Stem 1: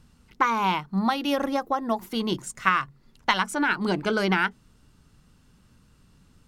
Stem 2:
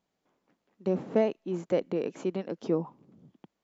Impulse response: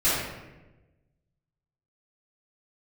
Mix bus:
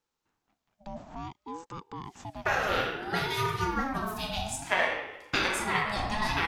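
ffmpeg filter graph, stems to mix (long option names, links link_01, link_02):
-filter_complex "[0:a]highpass=frequency=230:width=0.5412,highpass=frequency=230:width=1.3066,adelay=2050,volume=-8dB,asplit=2[link_01][link_02];[link_02]volume=-10.5dB[link_03];[1:a]acrossover=split=230|3000[link_04][link_05][link_06];[link_05]acompressor=threshold=-32dB:ratio=3[link_07];[link_04][link_07][link_06]amix=inputs=3:normalize=0,alimiter=level_in=2dB:limit=-24dB:level=0:latency=1:release=15,volume=-2dB,volume=-3dB[link_08];[2:a]atrim=start_sample=2205[link_09];[link_03][link_09]afir=irnorm=-1:irlink=0[link_10];[link_01][link_08][link_10]amix=inputs=3:normalize=0,highshelf=frequency=2900:gain=8,aeval=exprs='val(0)*sin(2*PI*540*n/s+540*0.25/0.58*sin(2*PI*0.58*n/s))':channel_layout=same"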